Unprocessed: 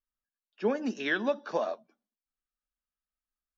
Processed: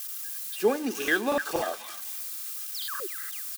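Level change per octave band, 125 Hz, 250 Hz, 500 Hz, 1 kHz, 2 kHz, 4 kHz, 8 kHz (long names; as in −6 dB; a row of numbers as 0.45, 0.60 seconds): 0.0 dB, +2.0 dB, +3.0 dB, +5.0 dB, +5.0 dB, +8.5 dB, can't be measured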